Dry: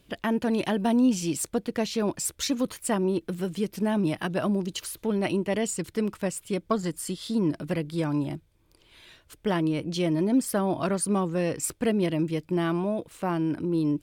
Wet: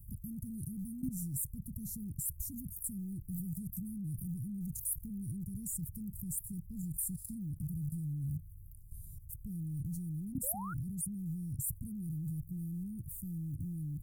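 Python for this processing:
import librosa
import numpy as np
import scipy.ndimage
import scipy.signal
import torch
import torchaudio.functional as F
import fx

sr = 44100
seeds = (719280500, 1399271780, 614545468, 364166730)

y = fx.rattle_buzz(x, sr, strikes_db=-38.0, level_db=-25.0)
y = fx.level_steps(y, sr, step_db=19)
y = scipy.signal.sosfilt(scipy.signal.cheby2(4, 80, [610.0, 2900.0], 'bandstop', fs=sr, output='sos'), y)
y = fx.spec_paint(y, sr, seeds[0], shape='rise', start_s=10.43, length_s=0.31, low_hz=480.0, high_hz=1500.0, level_db=-59.0)
y = fx.env_flatten(y, sr, amount_pct=50)
y = y * librosa.db_to_amplitude(9.0)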